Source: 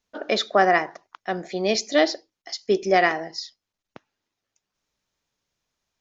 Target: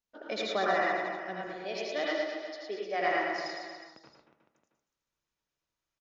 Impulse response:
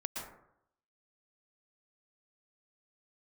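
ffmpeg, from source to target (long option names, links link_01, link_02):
-filter_complex "[0:a]asettb=1/sr,asplit=3[link_01][link_02][link_03];[link_01]atrim=end=1.454[link_04];[link_02]atrim=start=1.45:end=3.01,asetpts=PTS-STARTPTS,afade=type=in:duration=0.004:curve=qsin,afade=type=out:start_time=1.556:duration=0.004:curve=qsin,acrossover=split=360 4900:gain=0.158 1 0.0794[link_05][link_06][link_07];[link_05][link_06][link_07]amix=inputs=3:normalize=0[link_08];[link_03]atrim=start=3.006[link_09];[link_04][link_08]acrossfade=duration=0.004:curve1=hsin:curve2=qsin[link_10];[link_10][link_09]acrossfade=duration=0.004:curve1=qsin:curve2=hsin,aecho=1:1:110|231|364.1|510.5|671.6:0.631|0.398|0.251|0.158|0.1[link_11];[1:a]atrim=start_sample=2205,asetrate=66150,aresample=44100[link_12];[link_11][link_12]afir=irnorm=-1:irlink=0,volume=-8dB"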